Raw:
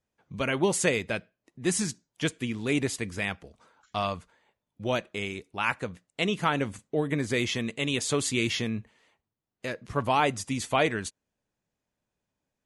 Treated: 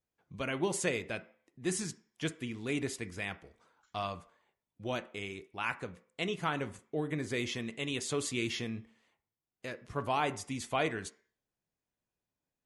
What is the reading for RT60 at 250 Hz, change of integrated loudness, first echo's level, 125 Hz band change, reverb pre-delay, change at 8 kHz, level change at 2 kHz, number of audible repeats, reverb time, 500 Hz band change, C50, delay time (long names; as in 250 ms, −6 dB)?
0.40 s, −7.0 dB, no echo audible, −7.5 dB, 3 ms, −7.5 dB, −7.0 dB, no echo audible, 0.50 s, −7.0 dB, 17.0 dB, no echo audible